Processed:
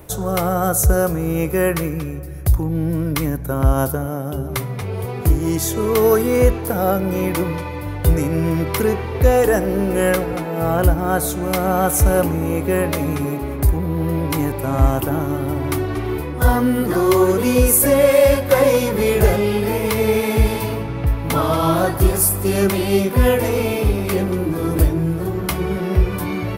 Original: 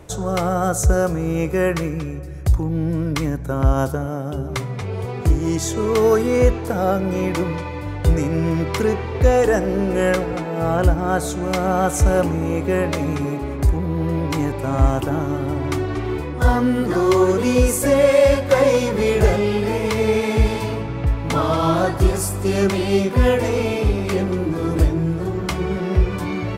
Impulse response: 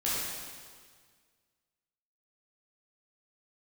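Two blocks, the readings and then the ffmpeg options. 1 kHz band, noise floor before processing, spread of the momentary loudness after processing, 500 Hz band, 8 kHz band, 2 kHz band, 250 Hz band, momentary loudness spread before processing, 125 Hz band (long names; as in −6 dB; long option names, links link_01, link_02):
+1.0 dB, −27 dBFS, 8 LU, +1.0 dB, +5.5 dB, +1.0 dB, +1.0 dB, 8 LU, +1.0 dB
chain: -af "aexciter=amount=4.4:drive=7.6:freq=10000,volume=1dB"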